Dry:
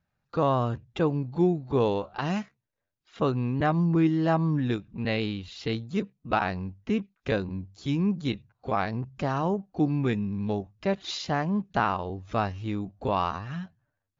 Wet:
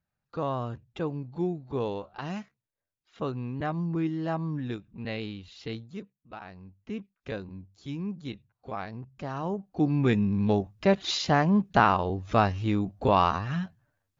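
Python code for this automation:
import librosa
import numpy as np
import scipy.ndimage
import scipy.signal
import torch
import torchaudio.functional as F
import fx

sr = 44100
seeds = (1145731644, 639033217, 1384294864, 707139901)

y = fx.gain(x, sr, db=fx.line((5.8, -6.5), (6.28, -19.0), (6.98, -8.5), (9.18, -8.5), (10.22, 4.5)))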